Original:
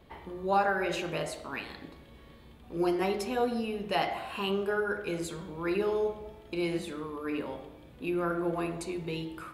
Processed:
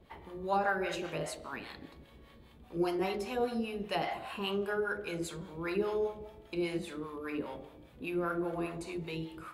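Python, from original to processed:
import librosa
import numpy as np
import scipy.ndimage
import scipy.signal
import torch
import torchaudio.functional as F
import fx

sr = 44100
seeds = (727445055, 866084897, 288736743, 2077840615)

y = fx.harmonic_tremolo(x, sr, hz=5.0, depth_pct=70, crossover_hz=600.0)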